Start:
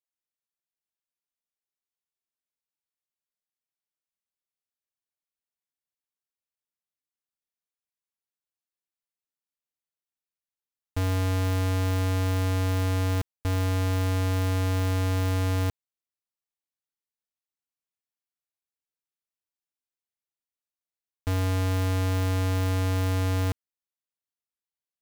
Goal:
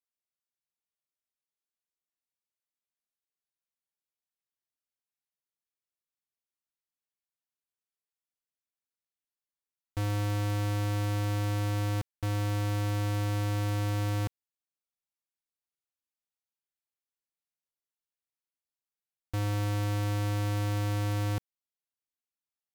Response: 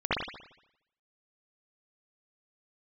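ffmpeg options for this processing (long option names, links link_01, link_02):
-af "asetrate=48510,aresample=44100,volume=-4.5dB"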